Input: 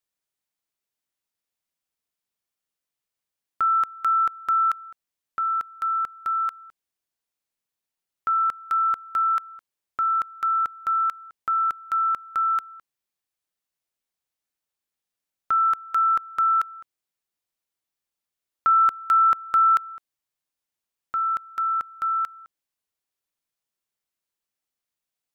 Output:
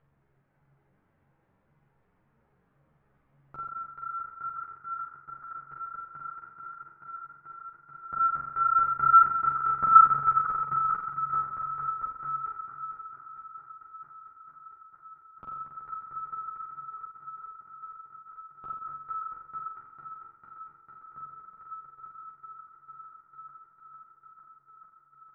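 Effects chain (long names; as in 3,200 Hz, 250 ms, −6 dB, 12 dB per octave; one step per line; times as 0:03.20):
feedback delay that plays each chunk backwards 221 ms, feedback 82%, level −5.5 dB
source passing by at 0:09.74, 6 m/s, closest 3.9 metres
low-pass filter 1,700 Hz 24 dB per octave
low-shelf EQ 390 Hz +11.5 dB
upward compression, threshold −42 dBFS
parametric band 140 Hz +15 dB 0.27 octaves
flutter between parallel walls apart 7.5 metres, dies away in 0.92 s
string-ensemble chorus
level +1.5 dB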